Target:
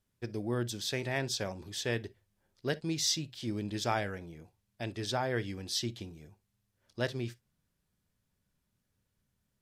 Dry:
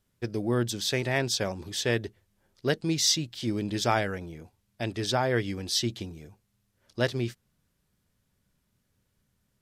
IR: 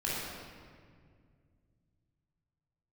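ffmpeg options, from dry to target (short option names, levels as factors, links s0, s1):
-filter_complex "[0:a]asplit=2[s0][s1];[1:a]atrim=start_sample=2205,atrim=end_sample=3087[s2];[s1][s2]afir=irnorm=-1:irlink=0,volume=0.119[s3];[s0][s3]amix=inputs=2:normalize=0,volume=0.447"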